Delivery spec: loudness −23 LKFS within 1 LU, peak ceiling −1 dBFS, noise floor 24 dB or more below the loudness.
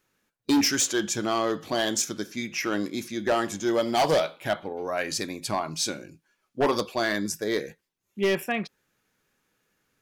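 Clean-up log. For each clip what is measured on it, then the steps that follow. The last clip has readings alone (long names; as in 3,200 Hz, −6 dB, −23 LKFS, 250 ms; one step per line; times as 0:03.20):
share of clipped samples 1.3%; peaks flattened at −17.5 dBFS; integrated loudness −27.0 LKFS; sample peak −17.5 dBFS; target loudness −23.0 LKFS
→ clipped peaks rebuilt −17.5 dBFS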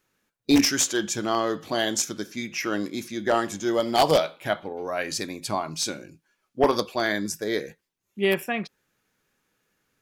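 share of clipped samples 0.0%; integrated loudness −25.5 LKFS; sample peak −8.5 dBFS; target loudness −23.0 LKFS
→ level +2.5 dB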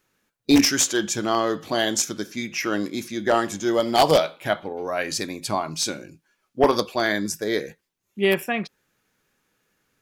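integrated loudness −23.0 LKFS; sample peak −6.0 dBFS; background noise floor −76 dBFS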